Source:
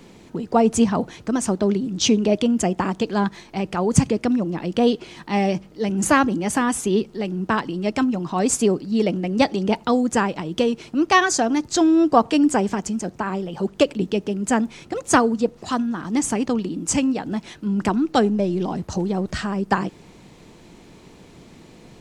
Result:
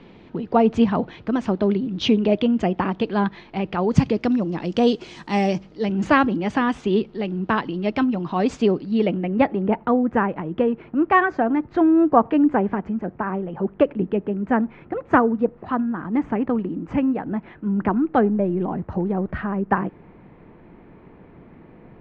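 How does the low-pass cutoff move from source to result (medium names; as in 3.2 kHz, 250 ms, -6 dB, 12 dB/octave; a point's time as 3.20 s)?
low-pass 24 dB/octave
3.61 s 3.6 kHz
5.34 s 8.6 kHz
5.97 s 3.9 kHz
8.87 s 3.9 kHz
9.58 s 2 kHz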